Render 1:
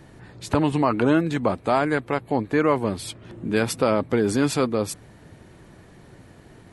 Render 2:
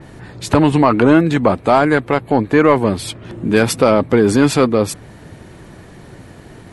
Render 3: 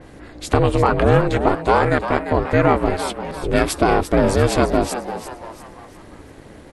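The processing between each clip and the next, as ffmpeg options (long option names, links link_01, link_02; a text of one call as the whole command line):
ffmpeg -i in.wav -af "acontrast=84,adynamicequalizer=threshold=0.0158:dfrequency=3900:dqfactor=0.7:tfrequency=3900:tqfactor=0.7:attack=5:release=100:ratio=0.375:range=2:mode=cutabove:tftype=highshelf,volume=2.5dB" out.wav
ffmpeg -i in.wav -filter_complex "[0:a]aeval=exprs='val(0)*sin(2*PI*180*n/s)':channel_layout=same,asplit=5[link_01][link_02][link_03][link_04][link_05];[link_02]adelay=345,afreqshift=150,volume=-10.5dB[link_06];[link_03]adelay=690,afreqshift=300,volume=-18.5dB[link_07];[link_04]adelay=1035,afreqshift=450,volume=-26.4dB[link_08];[link_05]adelay=1380,afreqshift=600,volume=-34.4dB[link_09];[link_01][link_06][link_07][link_08][link_09]amix=inputs=5:normalize=0,volume=-1dB" out.wav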